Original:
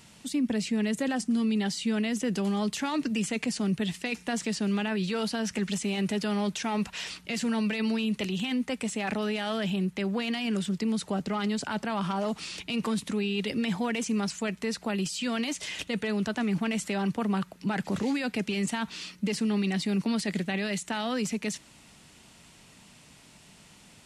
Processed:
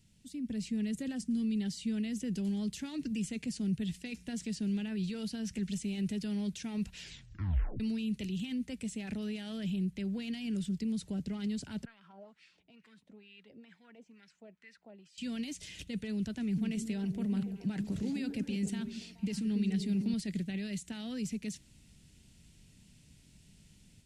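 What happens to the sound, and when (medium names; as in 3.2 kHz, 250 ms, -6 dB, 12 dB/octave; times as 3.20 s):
6.99 s: tape stop 0.81 s
11.85–15.18 s: wah-wah 2.2 Hz 630–2000 Hz, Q 3.3
16.43–20.14 s: repeats whose band climbs or falls 141 ms, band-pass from 270 Hz, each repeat 0.7 oct, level -3.5 dB
whole clip: amplifier tone stack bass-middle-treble 10-0-1; level rider gain up to 7 dB; band-stop 1.2 kHz, Q 10; trim +4.5 dB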